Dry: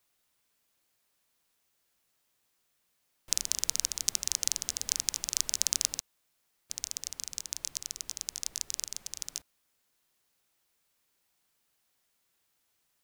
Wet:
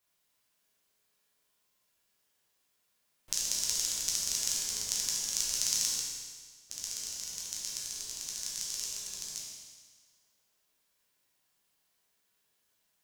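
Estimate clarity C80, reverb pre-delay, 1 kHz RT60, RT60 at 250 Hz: 2.0 dB, 10 ms, 1.6 s, 1.6 s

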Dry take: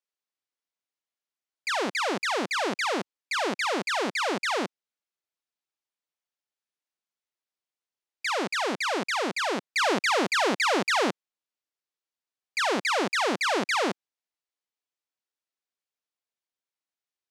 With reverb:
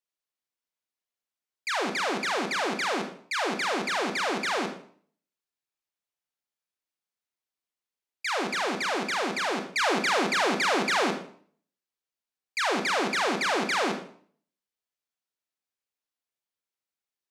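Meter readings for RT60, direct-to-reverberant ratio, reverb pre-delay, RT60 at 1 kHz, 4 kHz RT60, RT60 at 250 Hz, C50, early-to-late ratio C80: 0.55 s, 5.5 dB, 29 ms, 0.50 s, 0.45 s, 0.60 s, 8.0 dB, 12.0 dB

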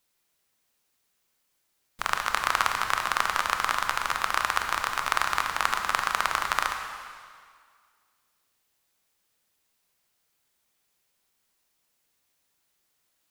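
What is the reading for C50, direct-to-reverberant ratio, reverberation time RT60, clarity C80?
5.5 dB, 4.0 dB, 2.0 s, 6.5 dB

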